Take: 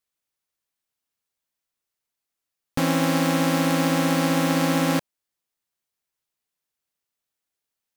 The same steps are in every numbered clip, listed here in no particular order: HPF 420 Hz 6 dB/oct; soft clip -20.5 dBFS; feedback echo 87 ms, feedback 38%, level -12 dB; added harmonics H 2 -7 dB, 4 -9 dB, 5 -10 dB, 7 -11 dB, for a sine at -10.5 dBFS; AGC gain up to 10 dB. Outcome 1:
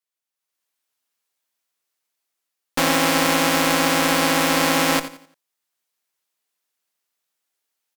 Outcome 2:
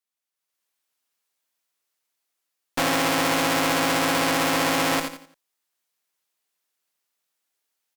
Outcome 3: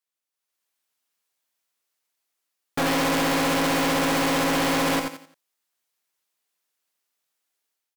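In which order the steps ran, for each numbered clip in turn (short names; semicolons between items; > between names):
feedback echo > soft clip > HPF > added harmonics > AGC; feedback echo > AGC > soft clip > HPF > added harmonics; AGC > feedback echo > added harmonics > HPF > soft clip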